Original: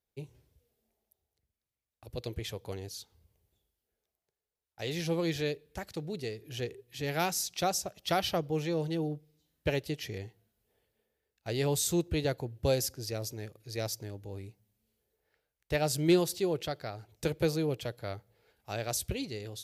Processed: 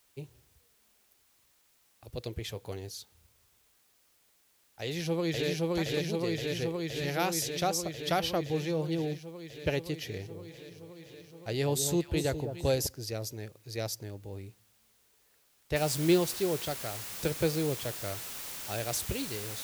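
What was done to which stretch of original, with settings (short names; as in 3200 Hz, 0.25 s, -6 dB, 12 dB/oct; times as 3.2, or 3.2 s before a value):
2.5–2.98 doubler 18 ms -12 dB
4.81–5.49 echo throw 0.52 s, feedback 80%, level 0 dB
10.07–12.87 echo with dull and thin repeats by turns 0.206 s, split 950 Hz, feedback 56%, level -7.5 dB
15.76 noise floor step -68 dB -41 dB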